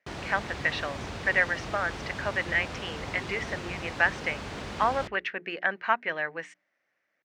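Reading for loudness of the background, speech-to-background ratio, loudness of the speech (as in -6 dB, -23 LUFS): -38.0 LUFS, 8.5 dB, -29.5 LUFS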